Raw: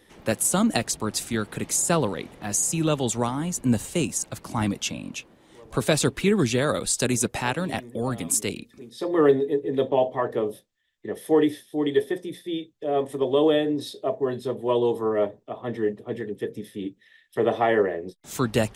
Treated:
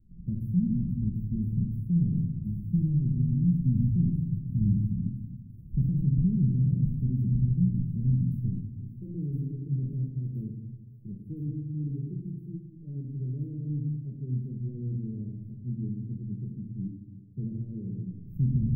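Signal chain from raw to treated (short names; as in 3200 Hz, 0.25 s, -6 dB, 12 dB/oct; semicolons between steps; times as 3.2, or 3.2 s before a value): tilt -2 dB/oct; shoebox room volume 400 m³, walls mixed, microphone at 1 m; limiter -11.5 dBFS, peak gain reduction 9 dB; inverse Chebyshev band-stop 750–8300 Hz, stop band 70 dB; on a send: thin delay 1.017 s, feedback 76%, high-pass 1500 Hz, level -6 dB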